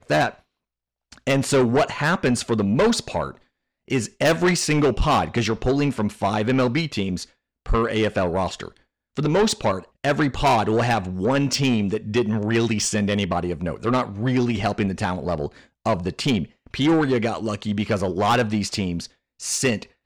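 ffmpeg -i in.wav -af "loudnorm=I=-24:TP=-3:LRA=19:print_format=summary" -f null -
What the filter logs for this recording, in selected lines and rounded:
Input Integrated:    -22.3 LUFS
Input True Peak:     -12.8 dBTP
Input LRA:             2.8 LU
Input Threshold:     -32.7 LUFS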